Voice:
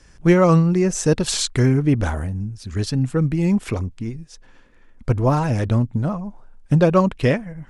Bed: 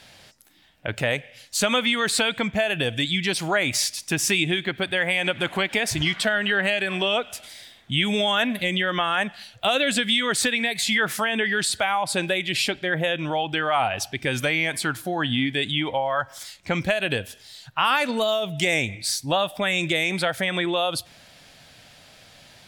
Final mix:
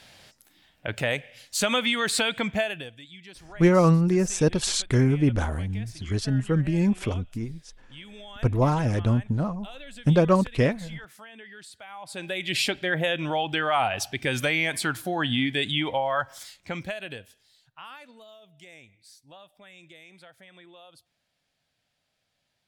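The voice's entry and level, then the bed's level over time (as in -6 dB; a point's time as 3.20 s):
3.35 s, -4.0 dB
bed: 2.61 s -2.5 dB
3.00 s -22.5 dB
11.81 s -22.5 dB
12.53 s -1.5 dB
16.19 s -1.5 dB
18.21 s -27 dB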